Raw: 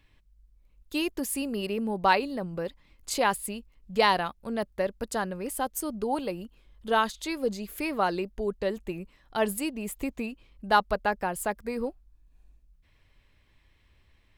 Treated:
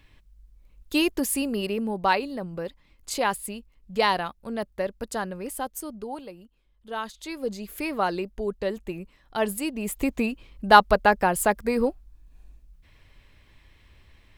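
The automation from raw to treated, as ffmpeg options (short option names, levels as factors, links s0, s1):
-af "volume=16.8,afade=t=out:st=0.97:d=1.09:silence=0.473151,afade=t=out:st=5.44:d=0.89:silence=0.316228,afade=t=in:st=6.89:d=0.86:silence=0.281838,afade=t=in:st=9.6:d=0.62:silence=0.446684"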